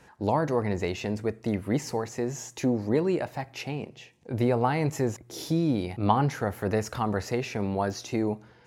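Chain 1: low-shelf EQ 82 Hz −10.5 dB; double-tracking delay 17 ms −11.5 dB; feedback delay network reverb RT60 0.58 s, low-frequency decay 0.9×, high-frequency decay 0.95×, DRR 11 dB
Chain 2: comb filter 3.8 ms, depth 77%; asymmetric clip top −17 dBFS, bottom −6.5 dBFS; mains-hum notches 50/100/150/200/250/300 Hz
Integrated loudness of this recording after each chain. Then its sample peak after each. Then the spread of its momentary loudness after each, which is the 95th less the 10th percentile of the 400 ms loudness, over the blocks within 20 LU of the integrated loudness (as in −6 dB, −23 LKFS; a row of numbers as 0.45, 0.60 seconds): −29.0, −27.5 LKFS; −8.5, −7.0 dBFS; 10, 10 LU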